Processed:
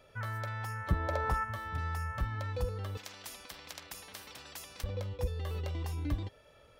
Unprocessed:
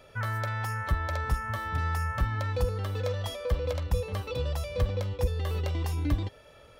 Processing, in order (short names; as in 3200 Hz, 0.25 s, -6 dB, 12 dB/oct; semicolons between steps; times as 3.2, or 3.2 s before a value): 0.88–1.43 bell 210 Hz -> 1100 Hz +11.5 dB 2.5 oct; 2.97–4.84 spectral compressor 10:1; gain -6.5 dB